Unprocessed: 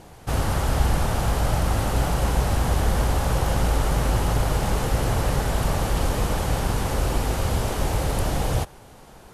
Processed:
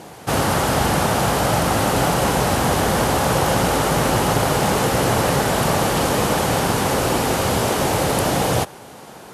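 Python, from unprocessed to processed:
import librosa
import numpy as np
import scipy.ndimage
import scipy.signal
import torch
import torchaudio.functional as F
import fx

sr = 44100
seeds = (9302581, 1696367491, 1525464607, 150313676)

y = scipy.signal.sosfilt(scipy.signal.butter(2, 160.0, 'highpass', fs=sr, output='sos'), x)
y = y * 10.0 ** (9.0 / 20.0)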